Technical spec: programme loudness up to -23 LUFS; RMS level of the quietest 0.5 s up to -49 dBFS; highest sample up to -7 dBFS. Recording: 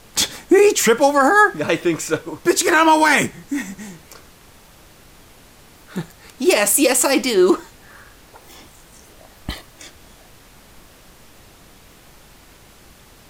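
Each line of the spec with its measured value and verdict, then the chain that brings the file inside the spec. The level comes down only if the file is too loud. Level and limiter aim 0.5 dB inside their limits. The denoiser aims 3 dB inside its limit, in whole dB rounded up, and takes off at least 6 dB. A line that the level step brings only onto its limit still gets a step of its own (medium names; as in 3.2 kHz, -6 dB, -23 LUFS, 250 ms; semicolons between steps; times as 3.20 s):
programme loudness -16.0 LUFS: fail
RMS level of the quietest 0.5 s -47 dBFS: fail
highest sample -4.0 dBFS: fail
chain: trim -7.5 dB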